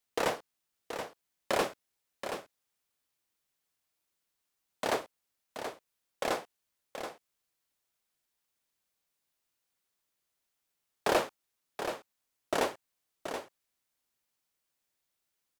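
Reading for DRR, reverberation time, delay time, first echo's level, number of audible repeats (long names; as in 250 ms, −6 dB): no reverb audible, no reverb audible, 728 ms, −8.5 dB, 1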